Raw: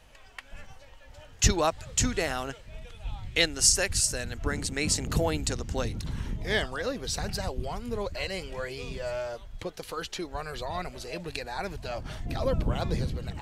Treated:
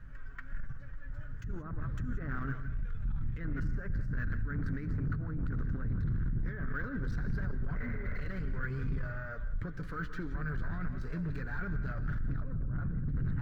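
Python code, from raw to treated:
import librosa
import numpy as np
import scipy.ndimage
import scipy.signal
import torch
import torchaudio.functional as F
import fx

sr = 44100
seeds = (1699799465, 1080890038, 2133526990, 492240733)

p1 = fx.spec_repair(x, sr, seeds[0], start_s=7.79, length_s=0.41, low_hz=450.0, high_hz=2300.0, source='after')
p2 = p1 + fx.echo_wet_lowpass(p1, sr, ms=168, feedback_pct=34, hz=2900.0, wet_db=-18.0, dry=0)
p3 = fx.env_lowpass_down(p2, sr, base_hz=1300.0, full_db=-22.5)
p4 = p3 + 0.46 * np.pad(p3, (int(7.0 * sr / 1000.0), 0))[:len(p3)]
p5 = fx.over_compress(p4, sr, threshold_db=-33.0, ratio=-1.0)
p6 = fx.low_shelf(p5, sr, hz=220.0, db=9.5)
p7 = 10.0 ** (-29.0 / 20.0) * np.tanh(p6 / 10.0 ** (-29.0 / 20.0))
p8 = fx.curve_eq(p7, sr, hz=(210.0, 810.0, 1500.0, 2700.0), db=(0, -19, 5, -21))
p9 = fx.rev_gated(p8, sr, seeds[1], gate_ms=200, shape='rising', drr_db=11.5)
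y = np.interp(np.arange(len(p9)), np.arange(len(p9))[::2], p9[::2])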